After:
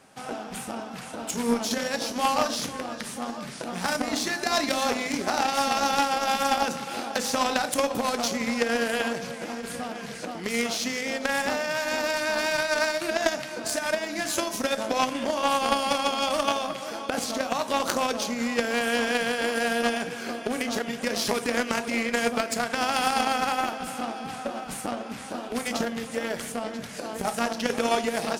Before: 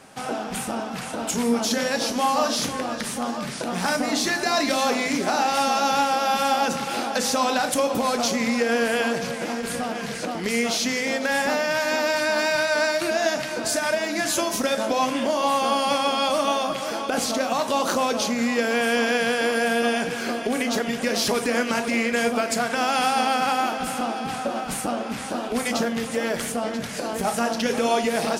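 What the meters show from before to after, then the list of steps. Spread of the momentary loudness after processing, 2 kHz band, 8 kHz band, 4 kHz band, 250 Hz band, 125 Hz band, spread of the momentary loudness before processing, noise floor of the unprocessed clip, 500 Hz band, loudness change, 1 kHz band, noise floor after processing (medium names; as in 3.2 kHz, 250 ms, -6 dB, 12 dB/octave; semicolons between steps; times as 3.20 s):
10 LU, -3.5 dB, -4.0 dB, -3.0 dB, -4.5 dB, -4.5 dB, 7 LU, -31 dBFS, -4.0 dB, -3.5 dB, -3.5 dB, -38 dBFS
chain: Chebyshev shaper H 3 -12 dB, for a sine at -8 dBFS; trim +5 dB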